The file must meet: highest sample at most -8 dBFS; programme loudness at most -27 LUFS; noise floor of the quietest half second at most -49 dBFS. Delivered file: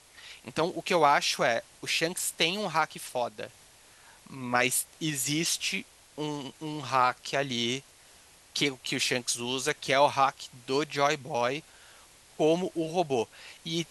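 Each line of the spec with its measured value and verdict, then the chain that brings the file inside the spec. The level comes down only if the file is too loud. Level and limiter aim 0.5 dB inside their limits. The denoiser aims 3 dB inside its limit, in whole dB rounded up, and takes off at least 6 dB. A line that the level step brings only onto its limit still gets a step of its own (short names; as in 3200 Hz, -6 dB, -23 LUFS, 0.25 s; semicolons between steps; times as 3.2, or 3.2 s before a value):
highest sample -9.5 dBFS: OK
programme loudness -28.5 LUFS: OK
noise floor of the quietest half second -56 dBFS: OK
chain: none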